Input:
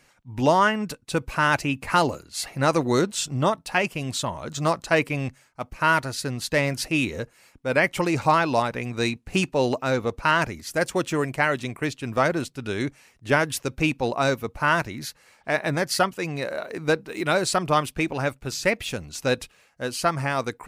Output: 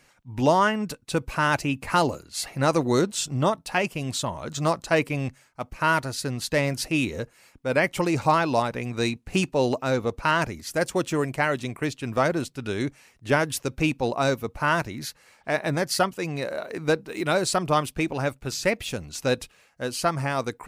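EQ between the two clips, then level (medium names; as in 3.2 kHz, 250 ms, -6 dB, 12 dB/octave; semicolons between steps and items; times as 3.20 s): dynamic bell 1.9 kHz, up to -3 dB, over -35 dBFS, Q 0.76; 0.0 dB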